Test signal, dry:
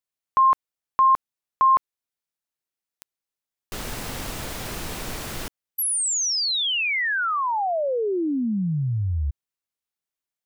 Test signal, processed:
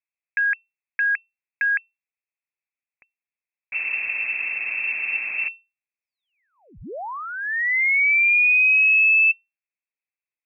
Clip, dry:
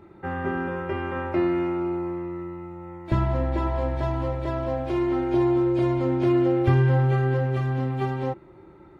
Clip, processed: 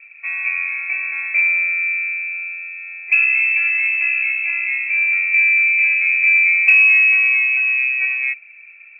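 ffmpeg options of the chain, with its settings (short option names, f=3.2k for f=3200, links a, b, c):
-af "lowpass=f=2.3k:t=q:w=0.5098,lowpass=f=2.3k:t=q:w=0.6013,lowpass=f=2.3k:t=q:w=0.9,lowpass=f=2.3k:t=q:w=2.563,afreqshift=-2700,aexciter=amount=9.5:drive=1.4:freq=2.1k,volume=-7dB"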